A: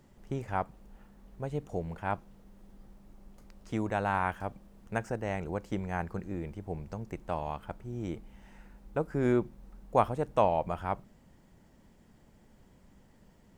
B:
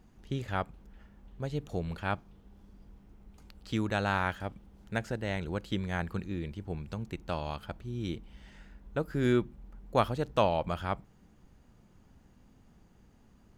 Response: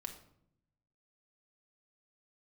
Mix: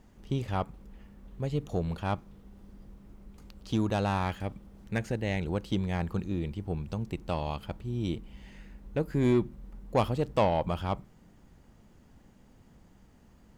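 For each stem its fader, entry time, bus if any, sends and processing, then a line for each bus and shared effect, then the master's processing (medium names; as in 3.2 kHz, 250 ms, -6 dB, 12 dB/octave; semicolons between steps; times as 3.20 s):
-3.0 dB, 0.00 s, no send, none
+1.0 dB, 0.00 s, no send, saturation -22.5 dBFS, distortion -13 dB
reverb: none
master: none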